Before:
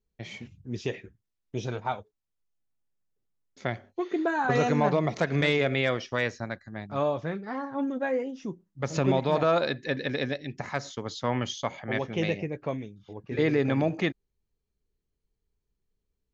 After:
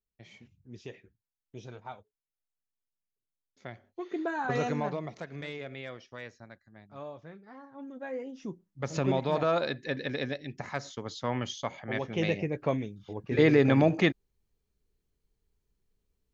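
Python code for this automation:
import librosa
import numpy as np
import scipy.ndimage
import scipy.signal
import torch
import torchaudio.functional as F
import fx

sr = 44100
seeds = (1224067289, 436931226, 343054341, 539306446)

y = fx.gain(x, sr, db=fx.line((3.72, -12.5), (4.16, -5.5), (4.67, -5.5), (5.3, -15.5), (7.77, -15.5), (8.44, -3.5), (11.95, -3.5), (12.69, 3.0)))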